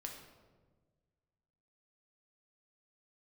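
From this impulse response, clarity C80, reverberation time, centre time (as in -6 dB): 7.0 dB, 1.4 s, 39 ms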